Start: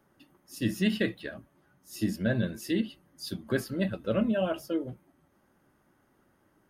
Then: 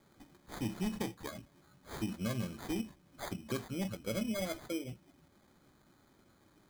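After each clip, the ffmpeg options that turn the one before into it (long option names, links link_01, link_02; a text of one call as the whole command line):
ffmpeg -i in.wav -af "acrusher=samples=16:mix=1:aa=0.000001,equalizer=frequency=780:width=0.3:gain=-3.5,acompressor=threshold=-45dB:ratio=2,volume=3.5dB" out.wav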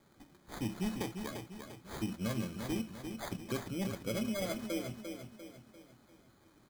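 ffmpeg -i in.wav -af "aecho=1:1:347|694|1041|1388|1735:0.447|0.201|0.0905|0.0407|0.0183" out.wav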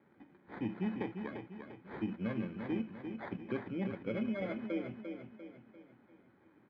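ffmpeg -i in.wav -af "highpass=140,equalizer=frequency=140:width_type=q:width=4:gain=-4,equalizer=frequency=650:width_type=q:width=4:gain=-6,equalizer=frequency=1200:width_type=q:width=4:gain=-7,lowpass=frequency=2300:width=0.5412,lowpass=frequency=2300:width=1.3066,volume=1.5dB" out.wav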